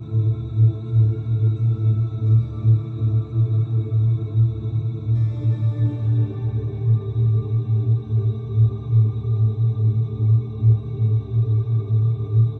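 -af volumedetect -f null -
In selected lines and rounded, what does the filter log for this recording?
mean_volume: -19.1 dB
max_volume: -7.4 dB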